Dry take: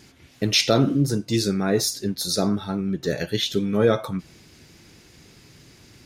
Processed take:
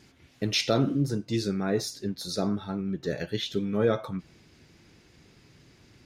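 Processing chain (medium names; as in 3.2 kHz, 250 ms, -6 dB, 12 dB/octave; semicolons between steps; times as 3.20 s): treble shelf 6.5 kHz -6.5 dB, from 1.08 s -11.5 dB; trim -5.5 dB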